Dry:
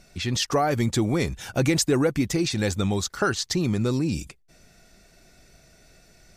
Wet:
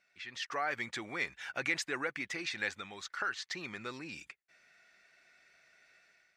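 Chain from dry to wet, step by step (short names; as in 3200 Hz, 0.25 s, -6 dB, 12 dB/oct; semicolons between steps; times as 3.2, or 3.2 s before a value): 2.68–3.55 compressor, threshold -24 dBFS, peak gain reduction 6 dB; band-pass 1900 Hz, Q 2; AGC gain up to 9 dB; gain -8.5 dB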